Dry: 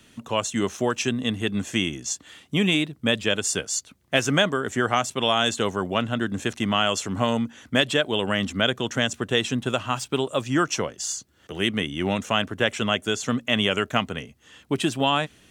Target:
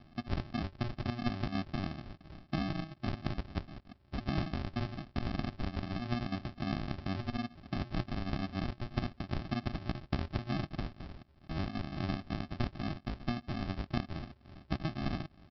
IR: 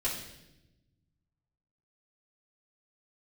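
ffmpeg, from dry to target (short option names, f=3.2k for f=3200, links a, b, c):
-af "lowshelf=f=110:g=5.5,acompressor=threshold=-31dB:ratio=5,aresample=11025,acrusher=samples=23:mix=1:aa=0.000001,aresample=44100,volume=-1.5dB"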